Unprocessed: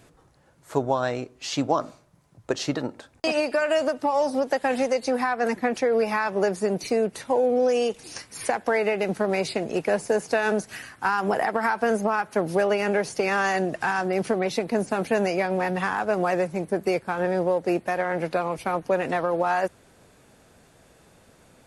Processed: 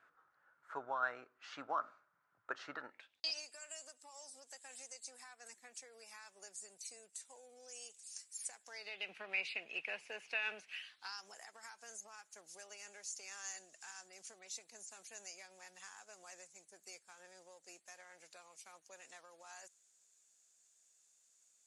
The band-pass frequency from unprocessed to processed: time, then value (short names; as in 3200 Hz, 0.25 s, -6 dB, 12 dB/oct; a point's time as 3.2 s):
band-pass, Q 5.5
2.79 s 1400 Hz
3.5 s 7700 Hz
8.62 s 7700 Hz
9.1 s 2600 Hz
10.73 s 2600 Hz
11.34 s 7000 Hz